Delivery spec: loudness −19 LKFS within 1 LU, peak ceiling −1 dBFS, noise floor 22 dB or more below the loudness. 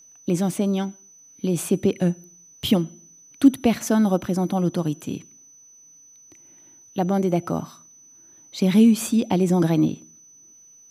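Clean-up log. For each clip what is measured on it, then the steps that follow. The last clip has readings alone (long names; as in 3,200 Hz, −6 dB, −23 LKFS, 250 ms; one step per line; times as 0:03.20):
interfering tone 6,000 Hz; level of the tone −48 dBFS; integrated loudness −22.0 LKFS; sample peak −4.5 dBFS; target loudness −19.0 LKFS
→ notch filter 6,000 Hz, Q 30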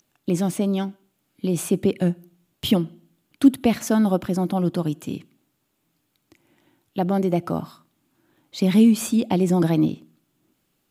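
interfering tone none found; integrated loudness −22.0 LKFS; sample peak −4.5 dBFS; target loudness −19.0 LKFS
→ level +3 dB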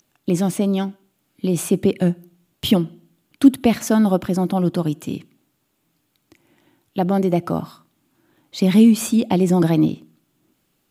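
integrated loudness −19.0 LKFS; sample peak −1.5 dBFS; background noise floor −69 dBFS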